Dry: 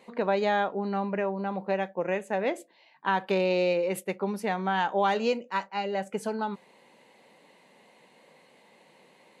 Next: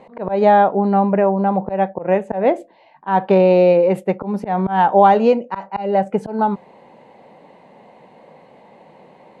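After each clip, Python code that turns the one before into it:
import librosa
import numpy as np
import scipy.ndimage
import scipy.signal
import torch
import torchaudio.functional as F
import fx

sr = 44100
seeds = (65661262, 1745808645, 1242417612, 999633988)

y = fx.peak_eq(x, sr, hz=750.0, db=9.5, octaves=1.2)
y = fx.auto_swell(y, sr, attack_ms=138.0)
y = fx.riaa(y, sr, side='playback')
y = y * librosa.db_to_amplitude(5.5)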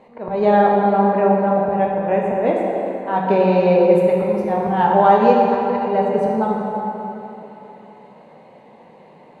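y = fx.rev_plate(x, sr, seeds[0], rt60_s=3.4, hf_ratio=0.65, predelay_ms=0, drr_db=-2.5)
y = y * librosa.db_to_amplitude(-4.5)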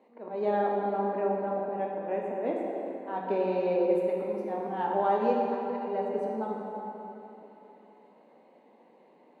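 y = fx.ladder_highpass(x, sr, hz=230.0, resonance_pct=45)
y = y * librosa.db_to_amplitude(-6.0)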